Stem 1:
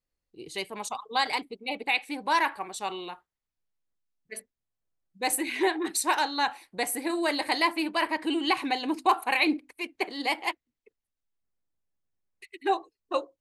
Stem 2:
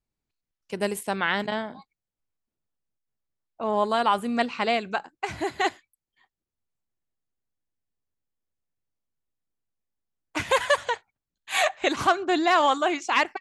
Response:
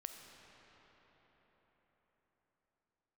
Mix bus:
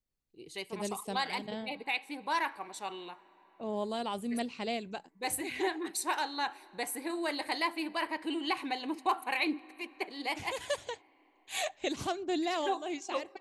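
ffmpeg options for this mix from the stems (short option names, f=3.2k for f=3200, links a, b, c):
-filter_complex "[0:a]acontrast=23,volume=-13dB,asplit=3[a][b][c];[b]volume=-11.5dB[d];[1:a]equalizer=f=1.3k:t=o:w=1.6:g=-14.5,volume=-5.5dB[e];[c]apad=whole_len=591111[f];[e][f]sidechaincompress=threshold=-40dB:ratio=8:attack=16:release=226[g];[2:a]atrim=start_sample=2205[h];[d][h]afir=irnorm=-1:irlink=0[i];[a][g][i]amix=inputs=3:normalize=0"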